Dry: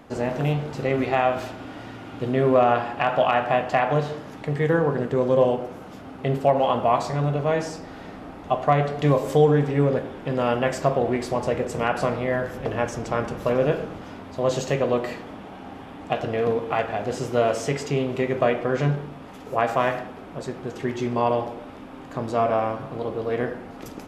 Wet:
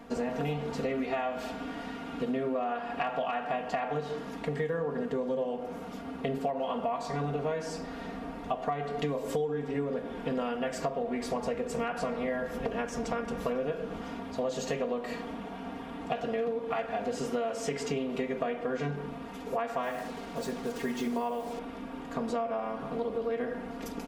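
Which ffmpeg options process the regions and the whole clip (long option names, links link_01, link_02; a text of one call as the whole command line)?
ffmpeg -i in.wav -filter_complex "[0:a]asettb=1/sr,asplit=3[link_01][link_02][link_03];[link_01]atrim=end=19.834[link_04];[link_02]atrim=start=19.83:end=21.59,asetpts=PTS-STARTPTS,afade=type=in:duration=0.004:curve=qsin,afade=type=out:start_time=1.756:duration=0.004:curve=qsin,bandreject=frequency=50:width_type=h:width=6,bandreject=frequency=100:width_type=h:width=6,bandreject=frequency=150:width_type=h:width=6,bandreject=frequency=200:width_type=h:width=6,bandreject=frequency=250:width_type=h:width=6,bandreject=frequency=300:width_type=h:width=6,acrusher=bits=6:mix=0:aa=0.5[link_05];[link_03]atrim=start=21.586[link_06];[link_04][link_05]acrossfade=duration=0.004:curve1=hsin:curve2=qsin[link_07];[link_07][link_06]acrossfade=duration=0.004:curve1=qsin:curve2=hsin,aecho=1:1:4.3:0.99,acompressor=threshold=-24dB:ratio=12,volume=-4dB" out.wav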